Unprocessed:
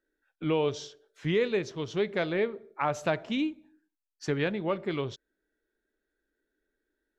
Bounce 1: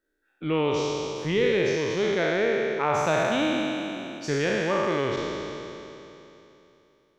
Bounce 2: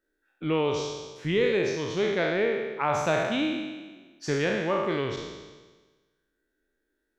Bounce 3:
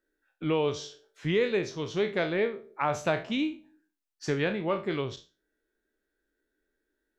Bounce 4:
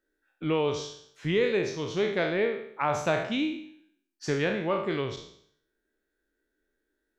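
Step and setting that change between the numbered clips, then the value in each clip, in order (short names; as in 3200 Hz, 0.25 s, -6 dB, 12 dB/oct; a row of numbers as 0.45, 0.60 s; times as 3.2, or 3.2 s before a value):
spectral trails, RT60: 3.08, 1.35, 0.31, 0.65 s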